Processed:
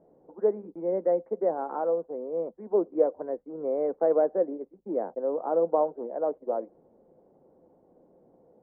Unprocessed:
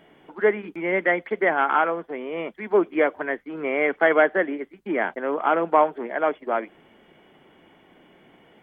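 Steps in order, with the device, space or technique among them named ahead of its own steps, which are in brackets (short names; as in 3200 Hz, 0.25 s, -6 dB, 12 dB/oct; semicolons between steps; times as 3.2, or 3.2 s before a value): under water (LPF 830 Hz 24 dB/oct; bell 510 Hz +11 dB 0.27 oct); gain -7 dB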